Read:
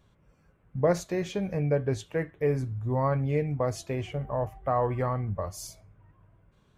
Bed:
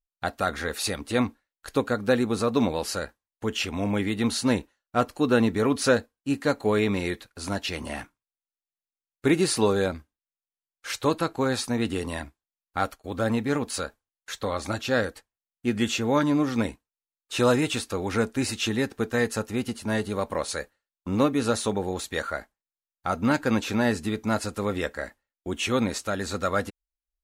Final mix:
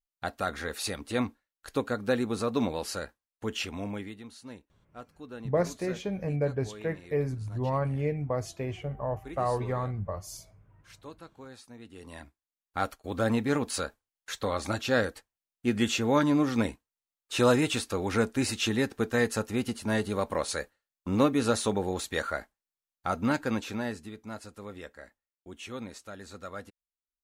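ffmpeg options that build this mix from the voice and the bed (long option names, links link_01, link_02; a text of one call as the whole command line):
ffmpeg -i stem1.wav -i stem2.wav -filter_complex "[0:a]adelay=4700,volume=-2.5dB[link_01];[1:a]volume=15.5dB,afade=type=out:start_time=3.6:duration=0.64:silence=0.141254,afade=type=in:start_time=11.91:duration=1.18:silence=0.0944061,afade=type=out:start_time=22.87:duration=1.24:silence=0.211349[link_02];[link_01][link_02]amix=inputs=2:normalize=0" out.wav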